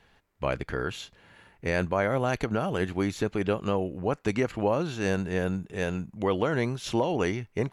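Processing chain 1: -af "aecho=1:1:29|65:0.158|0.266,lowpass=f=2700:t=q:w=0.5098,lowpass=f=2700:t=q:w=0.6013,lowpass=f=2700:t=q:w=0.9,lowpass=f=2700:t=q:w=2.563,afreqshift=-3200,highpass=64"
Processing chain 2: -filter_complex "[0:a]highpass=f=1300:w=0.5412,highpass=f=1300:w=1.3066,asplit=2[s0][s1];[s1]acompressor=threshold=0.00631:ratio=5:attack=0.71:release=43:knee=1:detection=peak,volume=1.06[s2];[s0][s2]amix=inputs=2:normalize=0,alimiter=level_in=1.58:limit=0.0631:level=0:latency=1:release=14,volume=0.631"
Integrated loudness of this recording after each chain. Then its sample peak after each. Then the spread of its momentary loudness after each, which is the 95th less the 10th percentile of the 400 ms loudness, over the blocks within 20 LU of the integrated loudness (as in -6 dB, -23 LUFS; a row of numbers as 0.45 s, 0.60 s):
-25.0 LUFS, -39.5 LUFS; -12.0 dBFS, -28.0 dBFS; 6 LU, 6 LU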